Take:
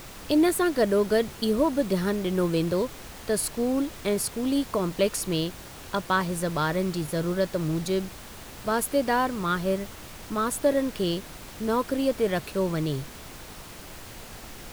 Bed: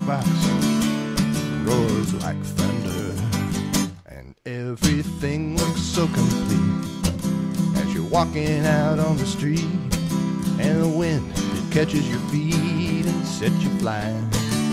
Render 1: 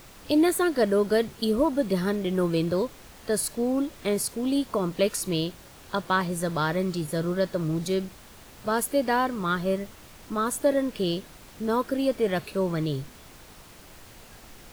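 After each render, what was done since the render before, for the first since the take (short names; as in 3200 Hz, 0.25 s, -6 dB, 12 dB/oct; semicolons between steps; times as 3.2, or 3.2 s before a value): noise print and reduce 6 dB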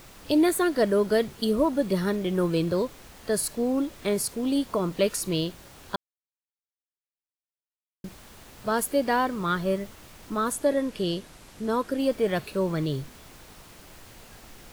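5.96–8.04 mute; 10.53–12 Chebyshev low-pass 11000 Hz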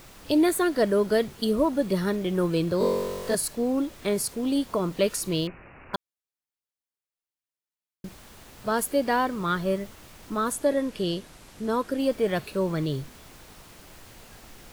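2.78–3.35 flutter echo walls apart 3.7 m, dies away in 1.4 s; 5.47–5.94 careless resampling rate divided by 8×, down none, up filtered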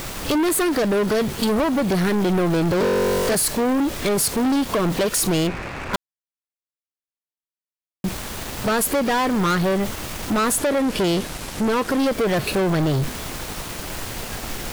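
compressor, threshold -26 dBFS, peak gain reduction 9 dB; sample leveller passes 5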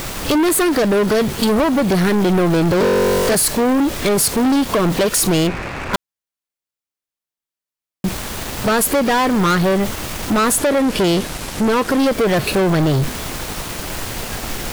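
gain +4.5 dB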